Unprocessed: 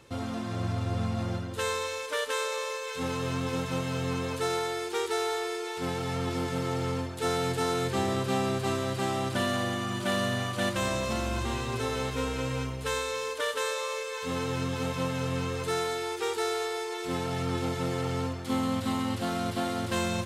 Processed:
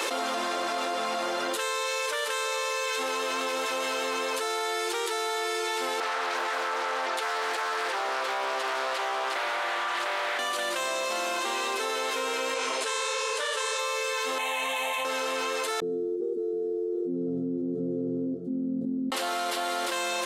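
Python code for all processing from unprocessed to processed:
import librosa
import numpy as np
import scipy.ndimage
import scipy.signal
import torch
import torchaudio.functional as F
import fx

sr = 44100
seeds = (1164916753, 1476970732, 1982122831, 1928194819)

y = fx.chain(x, sr, fx.highpass(hz=990.0, slope=12),
    fx.tilt_eq(slope=-4.0),
    fx.doppler_dist(depth_ms=0.45), at=(6.0, 10.39))
y = fx.chain(y, sr, fx.lowpass(hz=10000.0, slope=24),
    fx.bass_treble(bass_db=-8, treble_db=3),
    fx.detune_double(cents=47), at=(12.54, 13.79))
y = fx.chain(y, sr, fx.low_shelf(hz=400.0, db=-6.5),
    fx.fixed_phaser(hz=1400.0, stages=6), at=(14.38, 15.05))
y = fx.chain(y, sr, fx.cheby2_lowpass(hz=870.0, order=4, stop_db=70),
    fx.echo_single(ms=724, db=-10.5), at=(15.8, 19.12))
y = scipy.signal.sosfilt(scipy.signal.bessel(6, 550.0, 'highpass', norm='mag', fs=sr, output='sos'), y)
y = fx.env_flatten(y, sr, amount_pct=100)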